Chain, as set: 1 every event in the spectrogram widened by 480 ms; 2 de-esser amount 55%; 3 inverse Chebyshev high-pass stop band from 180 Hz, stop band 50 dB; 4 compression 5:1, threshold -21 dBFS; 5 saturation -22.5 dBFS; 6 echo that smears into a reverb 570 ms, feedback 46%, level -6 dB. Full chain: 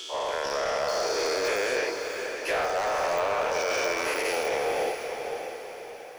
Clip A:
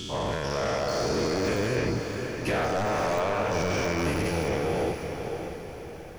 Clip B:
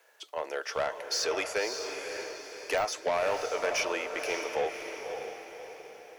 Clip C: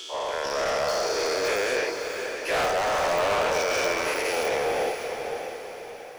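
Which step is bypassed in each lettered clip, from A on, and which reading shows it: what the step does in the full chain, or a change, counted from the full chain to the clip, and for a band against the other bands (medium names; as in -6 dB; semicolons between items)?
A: 3, 125 Hz band +23.0 dB; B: 1, 8 kHz band +3.0 dB; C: 4, mean gain reduction 3.5 dB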